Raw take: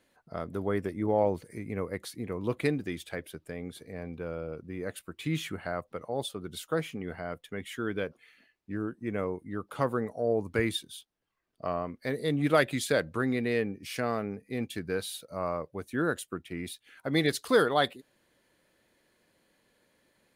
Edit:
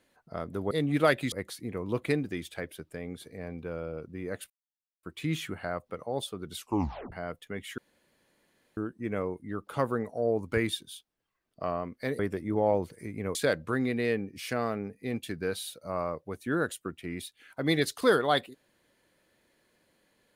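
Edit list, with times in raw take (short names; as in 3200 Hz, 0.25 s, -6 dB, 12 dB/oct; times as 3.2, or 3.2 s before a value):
0.71–1.87 swap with 12.21–12.82
5.05 insert silence 0.53 s
6.59 tape stop 0.55 s
7.8–8.79 room tone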